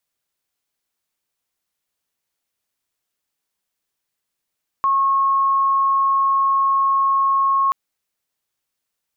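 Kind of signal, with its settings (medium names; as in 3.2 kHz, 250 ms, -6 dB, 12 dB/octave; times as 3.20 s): tone sine 1.09 kHz -14 dBFS 2.88 s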